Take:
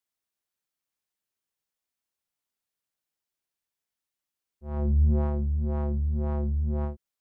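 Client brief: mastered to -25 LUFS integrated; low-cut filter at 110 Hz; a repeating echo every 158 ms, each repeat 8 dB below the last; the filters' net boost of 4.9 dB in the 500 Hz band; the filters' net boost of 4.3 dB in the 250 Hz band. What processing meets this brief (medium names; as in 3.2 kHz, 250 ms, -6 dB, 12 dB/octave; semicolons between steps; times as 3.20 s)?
high-pass 110 Hz; peaking EQ 250 Hz +4.5 dB; peaking EQ 500 Hz +5 dB; feedback delay 158 ms, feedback 40%, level -8 dB; trim +5 dB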